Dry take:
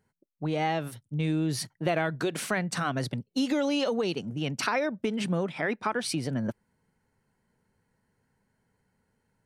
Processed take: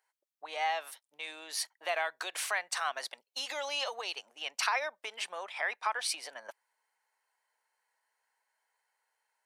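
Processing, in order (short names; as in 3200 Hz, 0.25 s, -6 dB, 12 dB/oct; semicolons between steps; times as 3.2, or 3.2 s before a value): HPF 750 Hz 24 dB/oct; bell 1400 Hz -5 dB 0.24 oct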